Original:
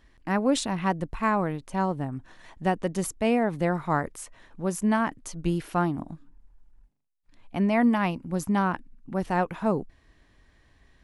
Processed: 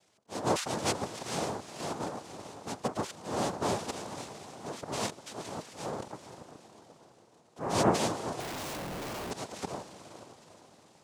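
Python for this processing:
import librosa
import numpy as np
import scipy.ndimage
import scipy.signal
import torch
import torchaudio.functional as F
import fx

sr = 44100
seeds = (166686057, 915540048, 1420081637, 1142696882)

y = fx.auto_swell(x, sr, attack_ms=243.0)
y = fx.echo_diffused(y, sr, ms=461, feedback_pct=49, wet_db=-11.0)
y = fx.noise_vocoder(y, sr, seeds[0], bands=2)
y = fx.schmitt(y, sr, flips_db=-41.0, at=(8.4, 9.31))
y = y * 10.0 ** (-5.0 / 20.0)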